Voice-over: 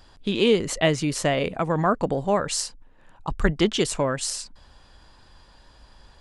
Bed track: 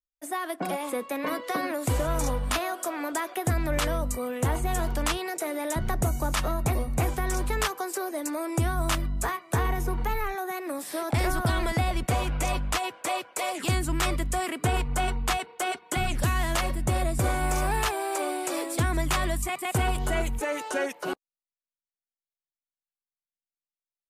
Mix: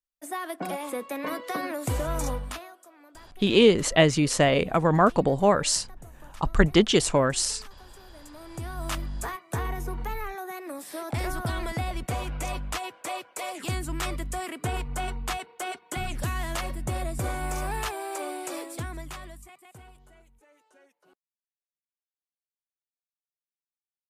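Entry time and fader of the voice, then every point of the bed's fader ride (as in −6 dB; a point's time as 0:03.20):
3.15 s, +2.0 dB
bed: 0:02.34 −2 dB
0:02.85 −22 dB
0:08.02 −22 dB
0:08.94 −4.5 dB
0:18.53 −4.5 dB
0:20.26 −31.5 dB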